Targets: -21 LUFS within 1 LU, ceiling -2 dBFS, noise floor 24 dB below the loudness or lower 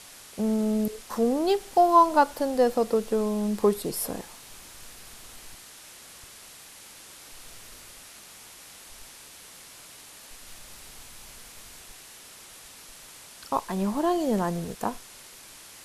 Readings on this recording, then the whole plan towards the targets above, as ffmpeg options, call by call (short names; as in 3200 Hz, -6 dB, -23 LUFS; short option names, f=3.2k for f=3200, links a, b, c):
noise floor -48 dBFS; noise floor target -50 dBFS; loudness -25.5 LUFS; peak -7.5 dBFS; loudness target -21.0 LUFS
-> -af "afftdn=nr=6:nf=-48"
-af "volume=4.5dB"